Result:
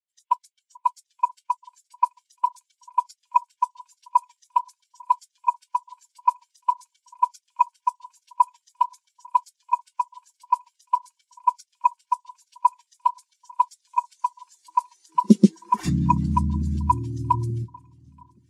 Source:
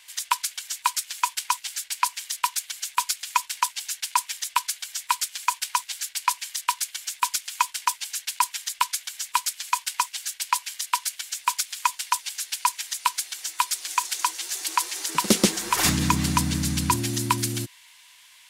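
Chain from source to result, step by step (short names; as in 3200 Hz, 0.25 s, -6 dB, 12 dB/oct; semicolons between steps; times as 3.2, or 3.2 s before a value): echo with dull and thin repeats by turns 0.438 s, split 1200 Hz, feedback 81%, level -10 dB; spectral expander 2.5:1; gain +2.5 dB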